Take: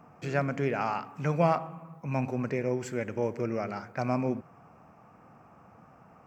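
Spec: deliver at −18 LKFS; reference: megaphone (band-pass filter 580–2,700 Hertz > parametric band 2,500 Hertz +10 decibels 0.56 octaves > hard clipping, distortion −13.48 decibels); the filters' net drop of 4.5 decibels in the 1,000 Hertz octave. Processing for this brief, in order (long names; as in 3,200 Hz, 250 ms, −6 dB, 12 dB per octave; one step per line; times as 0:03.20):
band-pass filter 580–2,700 Hz
parametric band 1,000 Hz −5.5 dB
parametric band 2,500 Hz +10 dB 0.56 octaves
hard clipping −26.5 dBFS
level +19 dB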